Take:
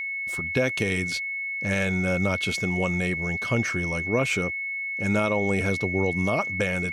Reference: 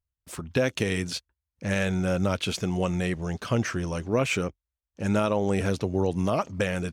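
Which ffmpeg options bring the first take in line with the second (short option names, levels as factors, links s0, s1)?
-af "bandreject=f=2200:w=30"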